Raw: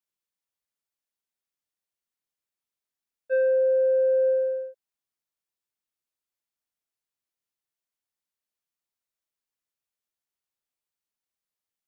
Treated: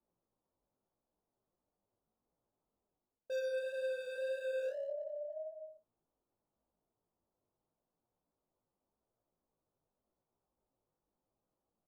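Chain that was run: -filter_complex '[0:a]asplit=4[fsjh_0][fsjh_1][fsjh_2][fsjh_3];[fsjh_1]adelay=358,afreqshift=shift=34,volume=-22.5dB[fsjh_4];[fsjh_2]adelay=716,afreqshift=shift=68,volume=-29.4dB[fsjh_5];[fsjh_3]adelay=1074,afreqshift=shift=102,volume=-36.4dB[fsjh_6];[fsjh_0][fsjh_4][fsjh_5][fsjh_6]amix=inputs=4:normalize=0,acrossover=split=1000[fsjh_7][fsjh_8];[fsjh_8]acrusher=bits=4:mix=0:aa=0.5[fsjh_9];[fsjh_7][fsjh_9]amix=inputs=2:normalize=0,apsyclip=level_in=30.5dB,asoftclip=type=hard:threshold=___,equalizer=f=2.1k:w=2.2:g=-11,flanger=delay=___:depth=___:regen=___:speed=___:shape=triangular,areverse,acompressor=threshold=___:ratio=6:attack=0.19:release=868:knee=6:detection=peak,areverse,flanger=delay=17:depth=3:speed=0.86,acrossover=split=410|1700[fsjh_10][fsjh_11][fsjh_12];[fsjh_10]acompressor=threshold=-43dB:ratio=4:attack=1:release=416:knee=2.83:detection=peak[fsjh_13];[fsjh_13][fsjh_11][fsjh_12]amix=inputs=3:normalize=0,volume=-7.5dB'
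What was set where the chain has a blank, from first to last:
-10.5dB, 3.2, 5.7, -52, 1.8, -25dB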